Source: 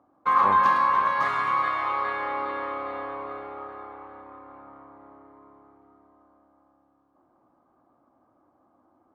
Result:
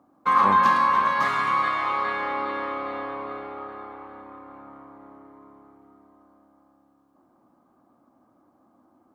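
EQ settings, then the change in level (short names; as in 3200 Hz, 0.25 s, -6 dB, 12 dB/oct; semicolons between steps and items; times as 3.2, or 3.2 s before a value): bell 210 Hz +8.5 dB 1 oct; high shelf 2800 Hz +8.5 dB; 0.0 dB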